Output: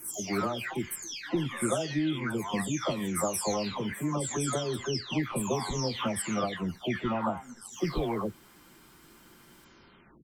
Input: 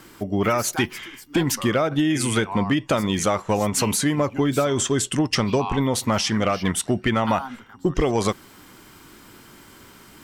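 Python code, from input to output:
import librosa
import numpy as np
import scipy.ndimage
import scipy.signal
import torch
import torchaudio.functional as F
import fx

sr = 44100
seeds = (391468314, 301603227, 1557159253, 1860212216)

y = fx.spec_delay(x, sr, highs='early', ms=591)
y = y * 10.0 ** (-7.5 / 20.0)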